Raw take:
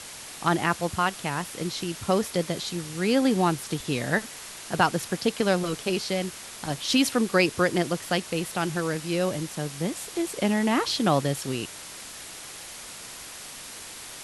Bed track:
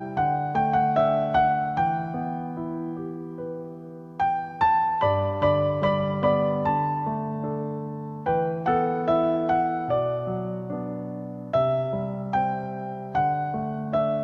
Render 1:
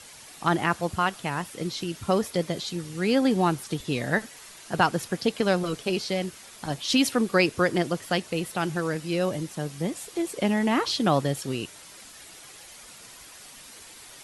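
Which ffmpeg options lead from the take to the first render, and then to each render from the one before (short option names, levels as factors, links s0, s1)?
-af "afftdn=nr=8:nf=-41"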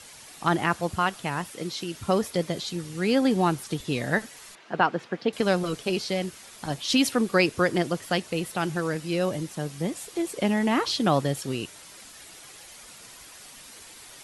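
-filter_complex "[0:a]asettb=1/sr,asplit=3[s0][s1][s2];[s0]atrim=end=1.524[s3];[s1]atrim=start=1.52:end=1.95,asetpts=PTS-STARTPTS,afade=t=in:d=0.004:c=qsin,afade=t=out:st=0.426:d=0.004:c=qsin,highpass=f=200:p=1[s4];[s2]atrim=start=1.946[s5];[s3][s4]acrossfade=d=0.004:c1=hsin:c2=qsin[s6];[s6][s5]acrossfade=d=0.004:c1=qsin:c2=hsin,asettb=1/sr,asplit=3[s7][s8][s9];[s7]atrim=end=4.554[s10];[s8]atrim=start=4.55:end=5.33,asetpts=PTS-STARTPTS,afade=t=in:d=0.004:c=qsin,afade=t=out:st=0.776:d=0.004:c=qsin,highpass=210,lowpass=2700[s11];[s9]atrim=start=5.326[s12];[s10][s11]acrossfade=d=0.004:c1=hsin:c2=qsin[s13];[s13][s12]acrossfade=d=0.004:c1=qsin:c2=hsin"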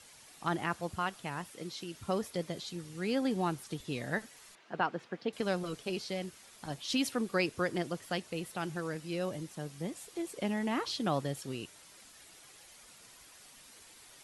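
-af "volume=0.335"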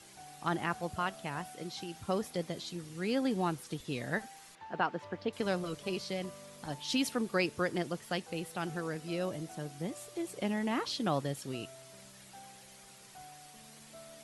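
-filter_complex "[1:a]volume=0.0335[s0];[0:a][s0]amix=inputs=2:normalize=0"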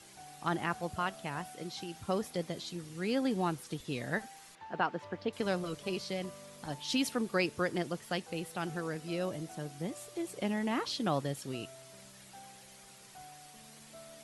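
-af anull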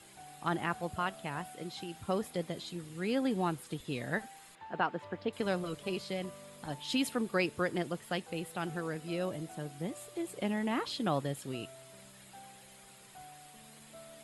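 -af "equalizer=f=5800:w=5.8:g=-11.5,bandreject=f=4500:w=17"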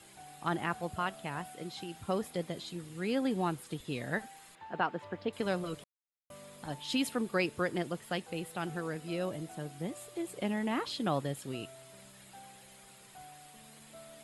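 -filter_complex "[0:a]asplit=3[s0][s1][s2];[s0]atrim=end=5.84,asetpts=PTS-STARTPTS,afade=t=out:st=5.836:d=0.004:c=hsin[s3];[s1]atrim=start=5.84:end=6.3,asetpts=PTS-STARTPTS,volume=0[s4];[s2]atrim=start=6.3,asetpts=PTS-STARTPTS,afade=t=in:d=0.004:c=hsin[s5];[s3][s4][s5]concat=n=3:v=0:a=1"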